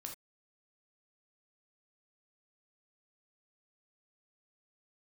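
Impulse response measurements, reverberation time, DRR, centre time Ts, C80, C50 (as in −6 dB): non-exponential decay, 2.0 dB, 19 ms, 14.5 dB, 7.0 dB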